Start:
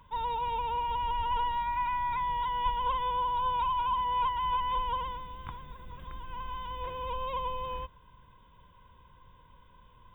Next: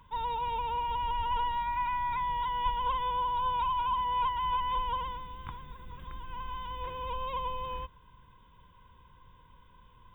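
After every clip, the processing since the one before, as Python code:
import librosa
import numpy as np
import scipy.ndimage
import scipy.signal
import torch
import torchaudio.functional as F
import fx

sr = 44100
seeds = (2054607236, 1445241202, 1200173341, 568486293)

y = fx.peak_eq(x, sr, hz=620.0, db=-6.0, octaves=0.45)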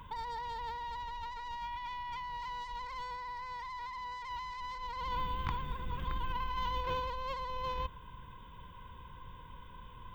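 y = fx.self_delay(x, sr, depth_ms=0.23)
y = fx.over_compress(y, sr, threshold_db=-40.0, ratio=-1.0)
y = y * 10.0 ** (1.0 / 20.0)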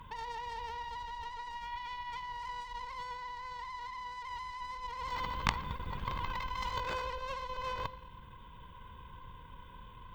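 y = fx.rev_schroeder(x, sr, rt60_s=1.2, comb_ms=29, drr_db=11.0)
y = fx.cheby_harmonics(y, sr, harmonics=(2, 3, 5, 7), levels_db=(-7, -6, -23, -30), full_scale_db=-19.5)
y = y * 10.0 ** (8.0 / 20.0)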